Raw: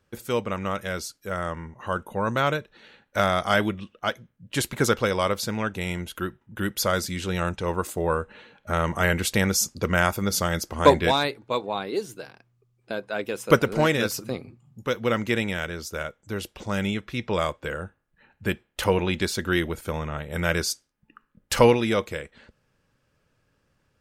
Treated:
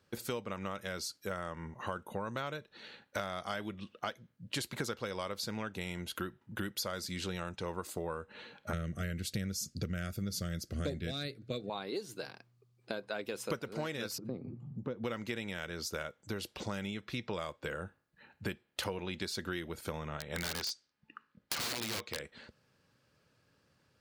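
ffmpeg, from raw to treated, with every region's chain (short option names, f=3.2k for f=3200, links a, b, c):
-filter_complex "[0:a]asettb=1/sr,asplit=3[a][b][c];[a]atrim=end=8.734[d];[b]atrim=start=8.73:end=11.7,asetpts=PTS-STARTPTS,afade=t=in:d=0.004:c=qsin,afade=t=out:st=2.966:d=0.004:c=qsin,asuperstop=centerf=930:order=4:qfactor=1.5,bass=f=250:g=13,treble=f=4k:g=3[e];[c]atrim=start=11.696[f];[d][e]acrossfade=d=0.004:c1=hsin:c2=qsin[g];[g][f]acrossfade=d=0.004:c1=qsin:c2=hsin,asettb=1/sr,asplit=3[h][i][j];[h]atrim=end=14.184[k];[i]atrim=start=14.18:end=15.04,asetpts=PTS-STARTPTS,afade=t=in:d=0.004:c=qsin,afade=t=out:st=0.856:d=0.004:c=qsin,acompressor=mode=upward:threshold=-29dB:ratio=2.5:attack=3.2:release=140:knee=2.83:detection=peak,bandpass=f=200:t=q:w=0.68[l];[j]atrim=start=15.036[m];[k][l]acrossfade=d=0.004:c1=hsin:c2=qsin[n];[n][m]acrossfade=d=0.004:c1=qsin:c2=hsin,asettb=1/sr,asplit=3[o][p][q];[o]atrim=end=20.174[r];[p]atrim=start=20.17:end=22.2,asetpts=PTS-STARTPTS,afade=t=in:d=0.004:c=qsin,afade=t=out:st=2.026:d=0.004:c=qsin,lowpass=5k,tiltshelf=f=830:g=-3.5,aeval=exprs='(mod(9.44*val(0)+1,2)-1)/9.44':c=same[s];[q]atrim=start=22.196[t];[r][s]acrossfade=d=0.004:c1=hsin:c2=qsin[u];[u][t]acrossfade=d=0.004:c1=qsin:c2=hsin,highpass=85,equalizer=f=4.4k:w=2.7:g=6.5,acompressor=threshold=-33dB:ratio=8,volume=-1.5dB"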